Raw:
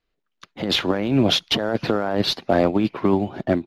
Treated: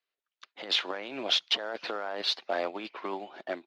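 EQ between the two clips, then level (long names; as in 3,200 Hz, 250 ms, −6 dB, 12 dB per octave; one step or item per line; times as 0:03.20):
band-pass filter 460–4,600 Hz
spectral tilt +2.5 dB per octave
−8.5 dB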